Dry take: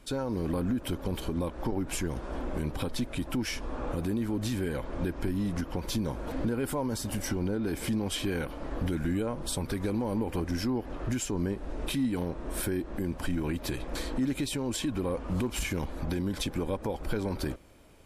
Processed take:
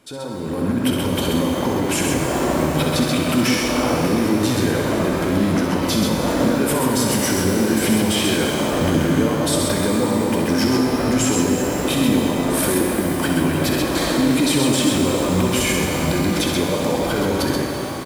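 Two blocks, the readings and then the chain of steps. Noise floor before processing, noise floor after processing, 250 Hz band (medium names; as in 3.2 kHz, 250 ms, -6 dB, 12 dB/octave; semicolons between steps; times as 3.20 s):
-42 dBFS, -24 dBFS, +13.5 dB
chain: high-pass 120 Hz 12 dB/octave; peak limiter -28 dBFS, peak gain reduction 9.5 dB; level rider gain up to 11.5 dB; on a send: multi-tap echo 65/131 ms -7.5/-4 dB; on the sum: pitch-shifted reverb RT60 3.9 s, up +12 st, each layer -8 dB, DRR 2 dB; trim +3 dB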